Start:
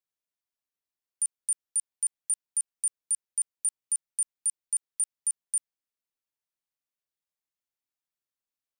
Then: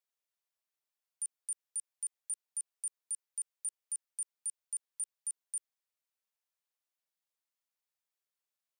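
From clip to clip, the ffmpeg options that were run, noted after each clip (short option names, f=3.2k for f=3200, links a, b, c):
-af "highpass=f=440:w=0.5412,highpass=f=440:w=1.3066,alimiter=level_in=7dB:limit=-24dB:level=0:latency=1,volume=-7dB"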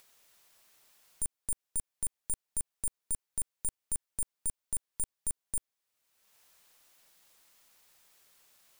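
-filter_complex "[0:a]asplit=2[a][b];[b]acompressor=mode=upward:threshold=-39dB:ratio=2.5,volume=2.5dB[c];[a][c]amix=inputs=2:normalize=0,aeval=exprs='0.158*(cos(1*acos(clip(val(0)/0.158,-1,1)))-cos(1*PI/2))+0.0282*(cos(8*acos(clip(val(0)/0.158,-1,1)))-cos(8*PI/2))':c=same,volume=-5dB"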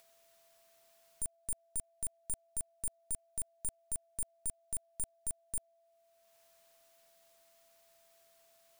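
-af "aeval=exprs='val(0)+0.000631*sin(2*PI*670*n/s)':c=same,volume=-4dB"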